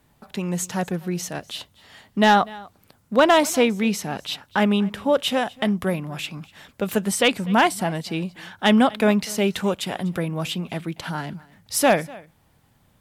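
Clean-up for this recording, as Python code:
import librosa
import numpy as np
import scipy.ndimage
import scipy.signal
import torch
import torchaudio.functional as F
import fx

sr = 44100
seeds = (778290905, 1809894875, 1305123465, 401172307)

y = fx.fix_declip(x, sr, threshold_db=-7.5)
y = fx.fix_echo_inverse(y, sr, delay_ms=246, level_db=-22.5)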